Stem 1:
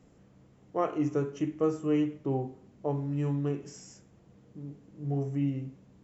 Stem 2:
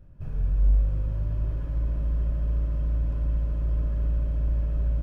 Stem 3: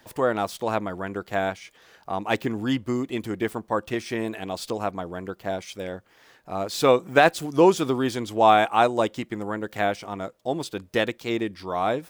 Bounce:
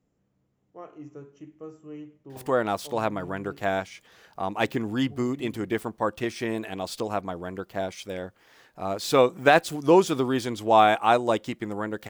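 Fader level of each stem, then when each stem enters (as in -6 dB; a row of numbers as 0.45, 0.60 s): -14.0 dB, off, -1.0 dB; 0.00 s, off, 2.30 s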